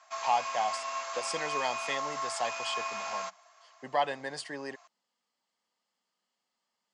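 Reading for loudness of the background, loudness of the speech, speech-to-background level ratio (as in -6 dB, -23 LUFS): -35.5 LUFS, -34.5 LUFS, 1.0 dB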